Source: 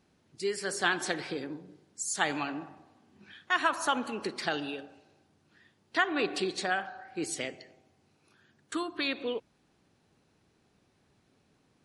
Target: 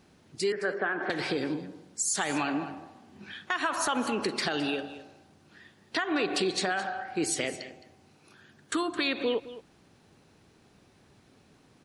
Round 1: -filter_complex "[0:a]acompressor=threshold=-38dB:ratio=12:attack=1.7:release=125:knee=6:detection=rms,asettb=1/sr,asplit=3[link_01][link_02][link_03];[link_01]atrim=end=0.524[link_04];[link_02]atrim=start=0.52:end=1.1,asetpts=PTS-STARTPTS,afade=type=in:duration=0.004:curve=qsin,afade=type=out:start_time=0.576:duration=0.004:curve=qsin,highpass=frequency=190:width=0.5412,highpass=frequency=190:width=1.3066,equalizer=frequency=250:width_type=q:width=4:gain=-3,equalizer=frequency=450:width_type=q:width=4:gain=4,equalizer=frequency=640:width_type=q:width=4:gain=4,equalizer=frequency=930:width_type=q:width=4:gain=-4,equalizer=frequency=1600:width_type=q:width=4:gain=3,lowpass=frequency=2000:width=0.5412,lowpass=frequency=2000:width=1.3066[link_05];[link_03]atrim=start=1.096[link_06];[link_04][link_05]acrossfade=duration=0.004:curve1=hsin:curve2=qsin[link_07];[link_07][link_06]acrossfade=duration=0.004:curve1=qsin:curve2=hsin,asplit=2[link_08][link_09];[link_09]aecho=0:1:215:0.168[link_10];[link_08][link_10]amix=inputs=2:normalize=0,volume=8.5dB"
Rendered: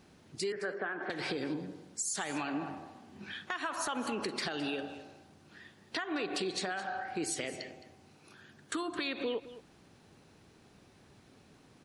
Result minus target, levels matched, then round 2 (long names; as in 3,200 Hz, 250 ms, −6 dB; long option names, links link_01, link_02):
downward compressor: peak gain reduction +7.5 dB
-filter_complex "[0:a]acompressor=threshold=-30dB:ratio=12:attack=1.7:release=125:knee=6:detection=rms,asettb=1/sr,asplit=3[link_01][link_02][link_03];[link_01]atrim=end=0.524[link_04];[link_02]atrim=start=0.52:end=1.1,asetpts=PTS-STARTPTS,afade=type=in:duration=0.004:curve=qsin,afade=type=out:start_time=0.576:duration=0.004:curve=qsin,highpass=frequency=190:width=0.5412,highpass=frequency=190:width=1.3066,equalizer=frequency=250:width_type=q:width=4:gain=-3,equalizer=frequency=450:width_type=q:width=4:gain=4,equalizer=frequency=640:width_type=q:width=4:gain=4,equalizer=frequency=930:width_type=q:width=4:gain=-4,equalizer=frequency=1600:width_type=q:width=4:gain=3,lowpass=frequency=2000:width=0.5412,lowpass=frequency=2000:width=1.3066[link_05];[link_03]atrim=start=1.096[link_06];[link_04][link_05]acrossfade=duration=0.004:curve1=hsin:curve2=qsin[link_07];[link_07][link_06]acrossfade=duration=0.004:curve1=qsin:curve2=hsin,asplit=2[link_08][link_09];[link_09]aecho=0:1:215:0.168[link_10];[link_08][link_10]amix=inputs=2:normalize=0,volume=8.5dB"